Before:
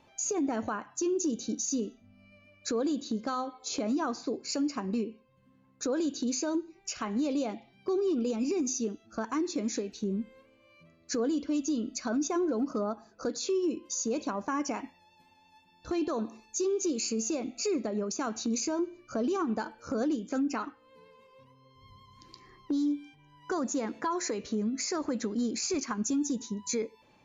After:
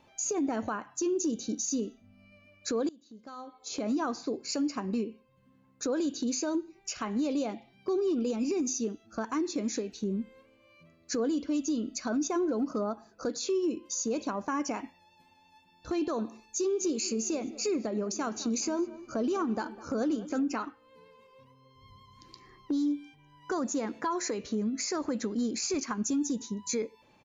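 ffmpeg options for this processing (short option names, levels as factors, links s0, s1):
-filter_complex "[0:a]asplit=3[s0][s1][s2];[s0]afade=t=out:st=16.79:d=0.02[s3];[s1]asplit=2[s4][s5];[s5]adelay=205,lowpass=f=2000:p=1,volume=0.15,asplit=2[s6][s7];[s7]adelay=205,lowpass=f=2000:p=1,volume=0.53,asplit=2[s8][s9];[s9]adelay=205,lowpass=f=2000:p=1,volume=0.53,asplit=2[s10][s11];[s11]adelay=205,lowpass=f=2000:p=1,volume=0.53,asplit=2[s12][s13];[s13]adelay=205,lowpass=f=2000:p=1,volume=0.53[s14];[s4][s6][s8][s10][s12][s14]amix=inputs=6:normalize=0,afade=t=in:st=16.79:d=0.02,afade=t=out:st=20.55:d=0.02[s15];[s2]afade=t=in:st=20.55:d=0.02[s16];[s3][s15][s16]amix=inputs=3:normalize=0,asplit=2[s17][s18];[s17]atrim=end=2.89,asetpts=PTS-STARTPTS,afade=t=out:st=2.886:d=0.004:c=hsin:silence=0.0707946[s19];[s18]atrim=start=2.89,asetpts=PTS-STARTPTS,afade=t=in:d=1.01:c=qua:silence=0.0707946[s20];[s19][s20]concat=n=2:v=0:a=1"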